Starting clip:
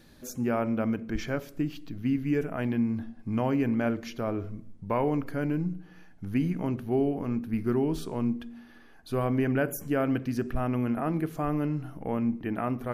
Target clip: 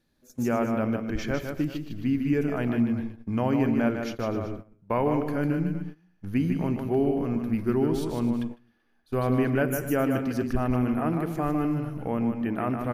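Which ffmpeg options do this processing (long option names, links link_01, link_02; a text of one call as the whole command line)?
ffmpeg -i in.wav -af "aecho=1:1:152|260|382:0.501|0.158|0.15,agate=range=-18dB:threshold=-36dB:ratio=16:detection=peak,volume=1.5dB" out.wav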